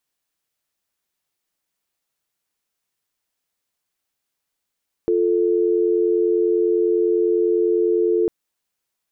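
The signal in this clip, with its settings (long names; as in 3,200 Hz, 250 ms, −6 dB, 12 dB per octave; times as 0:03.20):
call progress tone dial tone, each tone −18 dBFS 3.20 s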